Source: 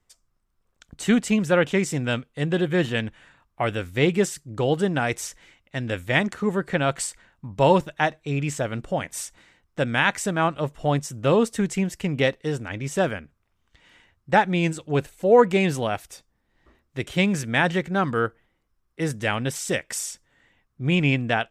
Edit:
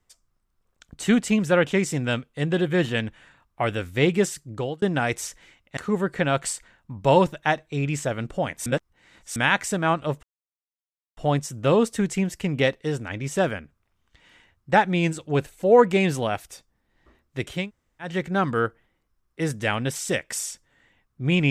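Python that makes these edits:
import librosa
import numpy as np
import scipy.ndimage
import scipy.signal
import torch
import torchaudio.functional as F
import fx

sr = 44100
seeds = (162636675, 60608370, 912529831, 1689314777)

y = fx.edit(x, sr, fx.fade_out_span(start_s=4.5, length_s=0.32),
    fx.cut(start_s=5.77, length_s=0.54),
    fx.reverse_span(start_s=9.2, length_s=0.7),
    fx.insert_silence(at_s=10.77, length_s=0.94),
    fx.room_tone_fill(start_s=17.19, length_s=0.52, crossfade_s=0.24), tone=tone)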